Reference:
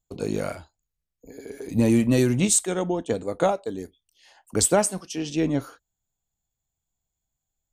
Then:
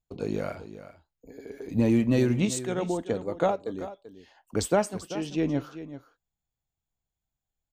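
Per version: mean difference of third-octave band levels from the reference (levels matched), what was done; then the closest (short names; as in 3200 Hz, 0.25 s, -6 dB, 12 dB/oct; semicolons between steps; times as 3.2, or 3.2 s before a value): 3.5 dB: bell 9800 Hz -15 dB 1.1 oct; echo 0.387 s -13.5 dB; gain -3 dB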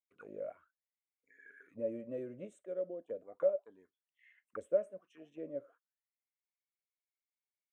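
12.5 dB: fixed phaser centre 2000 Hz, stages 4; auto-wah 570–2200 Hz, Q 13, down, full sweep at -25.5 dBFS; gain +2.5 dB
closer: first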